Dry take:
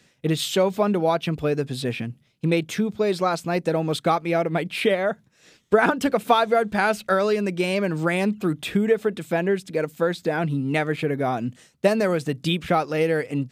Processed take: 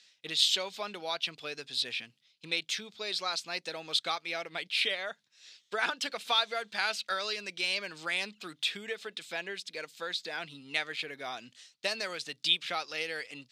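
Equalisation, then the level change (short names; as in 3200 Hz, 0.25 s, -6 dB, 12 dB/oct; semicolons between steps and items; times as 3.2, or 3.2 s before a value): band-pass 4200 Hz, Q 1.9; +5.0 dB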